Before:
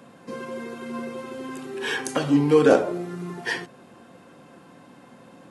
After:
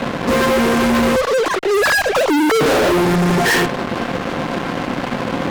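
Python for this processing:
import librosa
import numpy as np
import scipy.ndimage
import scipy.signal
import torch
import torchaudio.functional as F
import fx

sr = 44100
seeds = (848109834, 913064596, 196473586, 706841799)

p1 = fx.sine_speech(x, sr, at=(1.16, 2.61))
p2 = scipy.signal.sosfilt(scipy.signal.butter(2, 2300.0, 'lowpass', fs=sr, output='sos'), p1)
p3 = fx.over_compress(p2, sr, threshold_db=-28.0, ratio=-1.0)
p4 = p2 + (p3 * 10.0 ** (-0.5 / 20.0))
y = fx.fuzz(p4, sr, gain_db=40.0, gate_db=-42.0)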